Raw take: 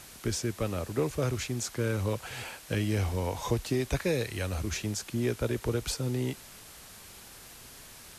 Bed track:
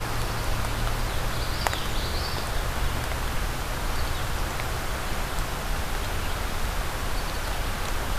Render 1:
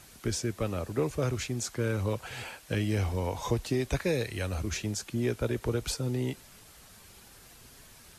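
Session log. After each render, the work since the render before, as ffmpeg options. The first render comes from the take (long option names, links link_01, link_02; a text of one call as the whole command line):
ffmpeg -i in.wav -af "afftdn=noise_reduction=6:noise_floor=-50" out.wav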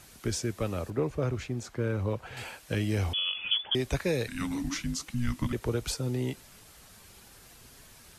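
ffmpeg -i in.wav -filter_complex "[0:a]asettb=1/sr,asplit=3[link_01][link_02][link_03];[link_01]atrim=end=0.904[link_04];[link_02]atrim=start=0.9:end=2.37,asetpts=PTS-STARTPTS,afade=type=in:duration=0.004:curve=qsin,afade=type=out:start_time=1.466:duration=0.004:curve=qsin,equalizer=frequency=11000:width_type=o:width=2.6:gain=-12.5[link_05];[link_03]atrim=start=2.366[link_06];[link_04][link_05]acrossfade=duration=0.004:curve1=hsin:curve2=qsin[link_07];[link_07][link_06]acrossfade=duration=0.004:curve1=qsin:curve2=hsin,asettb=1/sr,asplit=3[link_08][link_09][link_10];[link_08]atrim=end=3.134[link_11];[link_09]atrim=start=3.13:end=3.75,asetpts=PTS-STARTPTS,afade=type=in:duration=0.004:curve=qsin,afade=type=out:start_time=0.616:duration=0.004:curve=qsin,lowpass=frequency=3000:width_type=q:width=0.5098,lowpass=frequency=3000:width_type=q:width=0.6013,lowpass=frequency=3000:width_type=q:width=0.9,lowpass=frequency=3000:width_type=q:width=2.563,afreqshift=-3500[link_12];[link_10]atrim=start=3.746[link_13];[link_11][link_12]acrossfade=duration=0.004:curve1=hsin:curve2=qsin[link_14];[link_14][link_13]acrossfade=duration=0.004:curve1=qsin:curve2=hsin,asettb=1/sr,asplit=3[link_15][link_16][link_17];[link_15]atrim=end=4.284[link_18];[link_16]atrim=start=4.28:end=5.53,asetpts=PTS-STARTPTS,afade=type=in:duration=0.004:curve=qsin,afade=type=out:start_time=1.246:duration=0.004:curve=qsin,afreqshift=-360[link_19];[link_17]atrim=start=5.526[link_20];[link_18][link_19]acrossfade=duration=0.004:curve1=hsin:curve2=qsin[link_21];[link_21][link_20]acrossfade=duration=0.004:curve1=qsin:curve2=hsin" out.wav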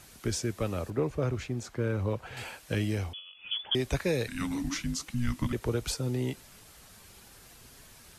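ffmpeg -i in.wav -filter_complex "[0:a]asplit=3[link_01][link_02][link_03];[link_01]atrim=end=3.22,asetpts=PTS-STARTPTS,afade=type=out:start_time=2.85:duration=0.37:silence=0.11885[link_04];[link_02]atrim=start=3.22:end=3.37,asetpts=PTS-STARTPTS,volume=-18.5dB[link_05];[link_03]atrim=start=3.37,asetpts=PTS-STARTPTS,afade=type=in:duration=0.37:silence=0.11885[link_06];[link_04][link_05][link_06]concat=n=3:v=0:a=1" out.wav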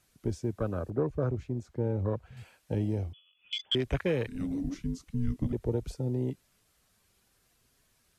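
ffmpeg -i in.wav -af "bandreject=frequency=860:width=13,afwtdn=0.0158" out.wav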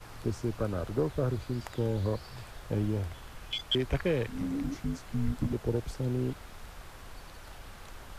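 ffmpeg -i in.wav -i bed.wav -filter_complex "[1:a]volume=-18.5dB[link_01];[0:a][link_01]amix=inputs=2:normalize=0" out.wav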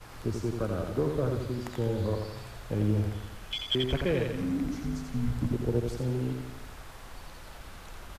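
ffmpeg -i in.wav -af "aecho=1:1:86|172|258|344|430|516|602:0.562|0.292|0.152|0.0791|0.0411|0.0214|0.0111" out.wav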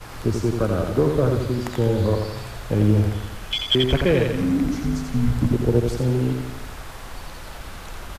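ffmpeg -i in.wav -af "volume=9.5dB" out.wav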